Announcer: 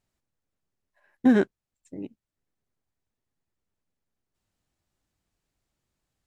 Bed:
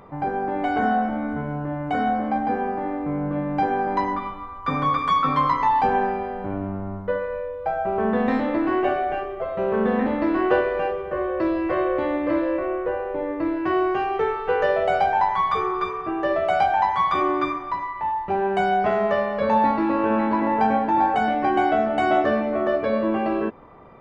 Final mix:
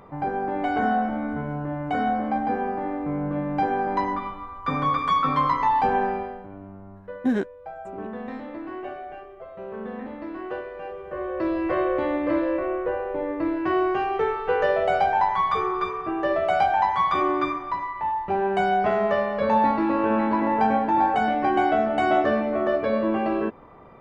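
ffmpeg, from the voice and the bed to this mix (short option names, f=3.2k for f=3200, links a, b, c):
-filter_complex "[0:a]adelay=6000,volume=-4dB[a];[1:a]volume=10.5dB,afade=t=out:st=6.17:d=0.3:silence=0.266073,afade=t=in:st=10.78:d=0.9:silence=0.251189[b];[a][b]amix=inputs=2:normalize=0"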